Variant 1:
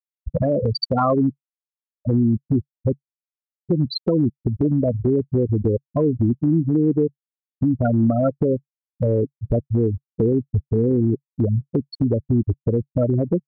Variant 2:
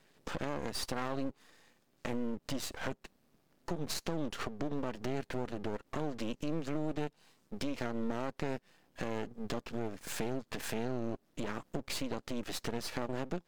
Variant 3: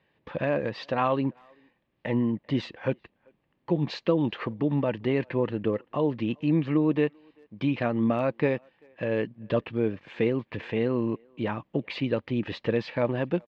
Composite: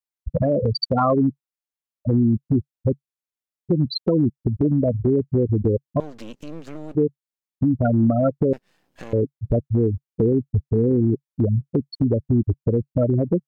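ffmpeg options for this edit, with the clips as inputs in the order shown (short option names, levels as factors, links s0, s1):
-filter_complex "[1:a]asplit=2[s0][s1];[0:a]asplit=3[s2][s3][s4];[s2]atrim=end=6.002[s5];[s0]atrim=start=5.998:end=6.952[s6];[s3]atrim=start=6.948:end=8.532[s7];[s1]atrim=start=8.528:end=9.132[s8];[s4]atrim=start=9.128[s9];[s5][s6]acrossfade=d=0.004:c1=hsin:c2=hsin[s10];[s10][s7]acrossfade=d=0.004:c1=hsin:c2=hsin[s11];[s11][s8]acrossfade=d=0.004:c1=hsin:c2=hsin[s12];[s12][s9]acrossfade=d=0.004:c1=hsin:c2=hsin"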